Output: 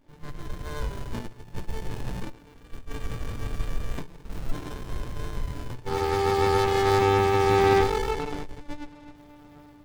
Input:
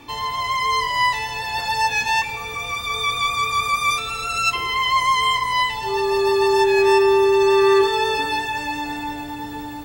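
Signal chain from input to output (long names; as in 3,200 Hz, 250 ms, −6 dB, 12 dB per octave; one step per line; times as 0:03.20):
0:08.11–0:09.15: low-pass filter 3,500 Hz
noise gate −24 dBFS, range −15 dB
windowed peak hold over 65 samples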